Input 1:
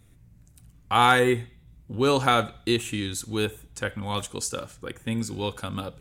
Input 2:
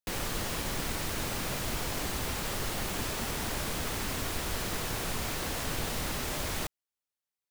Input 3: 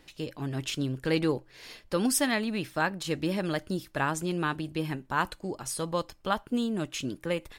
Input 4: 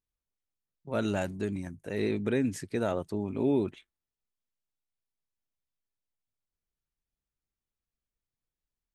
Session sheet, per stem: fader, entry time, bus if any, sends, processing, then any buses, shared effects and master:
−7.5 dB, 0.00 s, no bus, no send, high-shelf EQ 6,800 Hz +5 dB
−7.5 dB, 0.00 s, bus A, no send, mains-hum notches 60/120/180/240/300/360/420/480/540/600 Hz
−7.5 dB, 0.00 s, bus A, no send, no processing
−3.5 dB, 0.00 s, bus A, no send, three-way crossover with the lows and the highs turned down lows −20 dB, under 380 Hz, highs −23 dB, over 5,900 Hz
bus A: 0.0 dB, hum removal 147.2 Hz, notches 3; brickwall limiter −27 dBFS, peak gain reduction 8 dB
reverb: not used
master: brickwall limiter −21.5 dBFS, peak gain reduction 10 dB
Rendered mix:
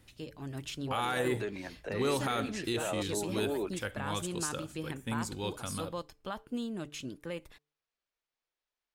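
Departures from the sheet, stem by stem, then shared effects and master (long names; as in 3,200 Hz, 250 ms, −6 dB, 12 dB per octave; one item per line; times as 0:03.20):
stem 2: muted
stem 4 −3.5 dB → +6.0 dB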